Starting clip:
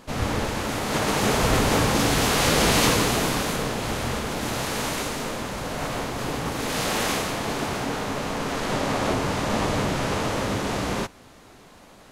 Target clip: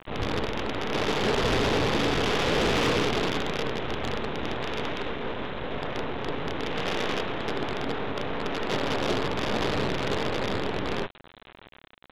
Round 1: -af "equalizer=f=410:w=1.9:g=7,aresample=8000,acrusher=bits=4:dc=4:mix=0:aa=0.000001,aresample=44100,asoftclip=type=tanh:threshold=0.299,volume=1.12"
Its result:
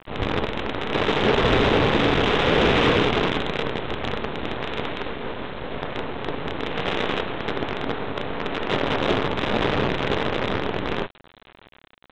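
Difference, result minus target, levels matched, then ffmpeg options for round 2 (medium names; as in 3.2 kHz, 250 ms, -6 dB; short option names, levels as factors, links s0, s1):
saturation: distortion -12 dB
-af "equalizer=f=410:w=1.9:g=7,aresample=8000,acrusher=bits=4:dc=4:mix=0:aa=0.000001,aresample=44100,asoftclip=type=tanh:threshold=0.0891,volume=1.12"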